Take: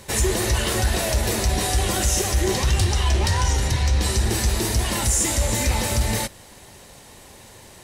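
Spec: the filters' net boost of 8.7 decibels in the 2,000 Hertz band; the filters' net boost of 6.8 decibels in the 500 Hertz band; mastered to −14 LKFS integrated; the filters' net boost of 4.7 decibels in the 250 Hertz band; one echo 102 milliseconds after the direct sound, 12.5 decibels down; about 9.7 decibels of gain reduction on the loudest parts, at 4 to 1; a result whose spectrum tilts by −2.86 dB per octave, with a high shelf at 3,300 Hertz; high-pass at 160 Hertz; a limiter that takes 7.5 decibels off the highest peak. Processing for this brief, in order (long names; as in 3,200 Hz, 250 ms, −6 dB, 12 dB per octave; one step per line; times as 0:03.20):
high-pass filter 160 Hz
parametric band 250 Hz +4.5 dB
parametric band 500 Hz +7 dB
parametric band 2,000 Hz +8 dB
high-shelf EQ 3,300 Hz +6 dB
downward compressor 4 to 1, threshold −25 dBFS
brickwall limiter −20 dBFS
single-tap delay 102 ms −12.5 dB
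level +14.5 dB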